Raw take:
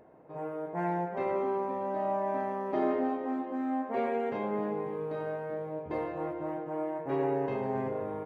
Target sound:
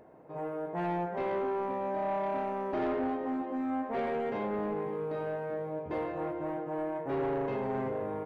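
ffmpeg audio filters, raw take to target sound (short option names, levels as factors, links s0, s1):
-af "asoftclip=type=tanh:threshold=0.0398,volume=1.19"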